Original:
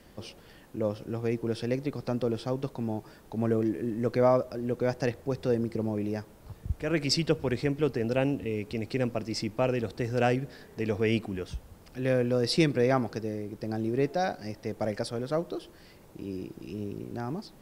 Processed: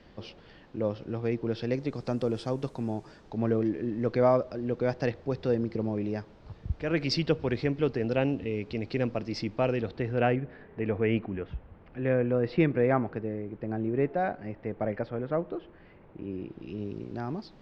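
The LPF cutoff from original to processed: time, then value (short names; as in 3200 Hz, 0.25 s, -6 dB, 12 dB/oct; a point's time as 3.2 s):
LPF 24 dB/oct
1.57 s 4700 Hz
2.21 s 9400 Hz
2.88 s 9400 Hz
3.42 s 4900 Hz
9.71 s 4900 Hz
10.42 s 2500 Hz
16.21 s 2500 Hz
16.94 s 4900 Hz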